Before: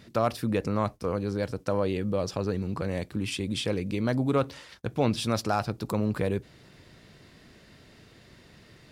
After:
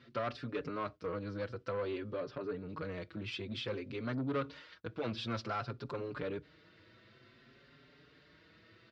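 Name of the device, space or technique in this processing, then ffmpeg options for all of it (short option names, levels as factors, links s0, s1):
barber-pole flanger into a guitar amplifier: -filter_complex "[0:a]asplit=2[s0][s1];[s1]adelay=5.4,afreqshift=0.54[s2];[s0][s2]amix=inputs=2:normalize=1,asoftclip=type=tanh:threshold=0.0531,highpass=84,equalizer=f=84:t=q:w=4:g=-8,equalizer=f=190:t=q:w=4:g=-9,equalizer=f=790:t=q:w=4:g=-8,equalizer=f=1400:t=q:w=4:g=6,lowpass=f=4500:w=0.5412,lowpass=f=4500:w=1.3066,asettb=1/sr,asplit=3[s3][s4][s5];[s3]atrim=end=2.204[s6];[s4]atrim=start=2.2:end=2.69,asetpts=PTS-STARTPTS,afade=t=in:d=0.004:c=qsin,afade=t=out:st=0.486:d=0.004:c=qsin,equalizer=f=9100:w=0.47:g=-14[s7];[s5]atrim=start=2.686[s8];[s6][s7]acrossfade=d=0.004:c1=hsin:c2=qsin[s9];[s9][s8]acrossfade=d=0.004:c1=qsin:c2=hsin,volume=0.668"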